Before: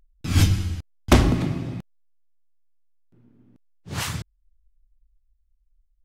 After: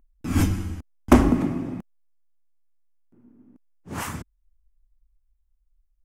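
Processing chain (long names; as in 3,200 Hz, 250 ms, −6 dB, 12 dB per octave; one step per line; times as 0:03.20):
octave-band graphic EQ 125/250/1,000/4,000 Hz −8/+8/+4/−12 dB
level −1.5 dB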